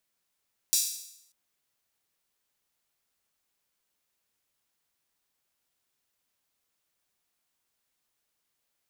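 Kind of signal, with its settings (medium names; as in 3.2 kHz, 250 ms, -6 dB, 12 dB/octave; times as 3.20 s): open hi-hat length 0.59 s, high-pass 5.3 kHz, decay 0.76 s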